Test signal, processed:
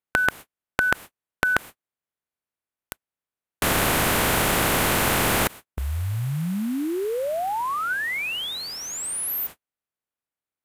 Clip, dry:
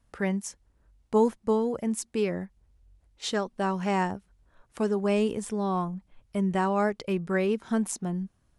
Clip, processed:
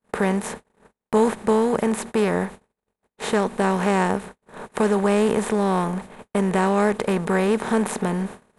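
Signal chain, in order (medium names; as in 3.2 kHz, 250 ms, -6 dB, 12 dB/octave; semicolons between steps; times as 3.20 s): spectral levelling over time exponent 0.4; gate -35 dBFS, range -51 dB; peaking EQ 5.3 kHz -8.5 dB 1.2 oct; trim +2 dB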